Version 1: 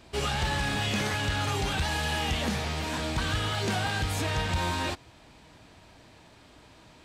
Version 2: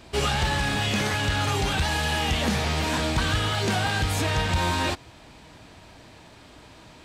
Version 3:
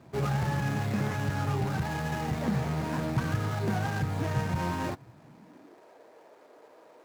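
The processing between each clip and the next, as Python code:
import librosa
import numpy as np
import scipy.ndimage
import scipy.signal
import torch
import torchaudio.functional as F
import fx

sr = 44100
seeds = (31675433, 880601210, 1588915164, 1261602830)

y1 = fx.rider(x, sr, range_db=10, speed_s=0.5)
y1 = F.gain(torch.from_numpy(y1), 4.5).numpy()
y2 = scipy.signal.medfilt(y1, 15)
y2 = fx.filter_sweep_highpass(y2, sr, from_hz=130.0, to_hz=470.0, start_s=5.22, end_s=5.86, q=2.9)
y2 = F.gain(torch.from_numpy(y2), -6.0).numpy()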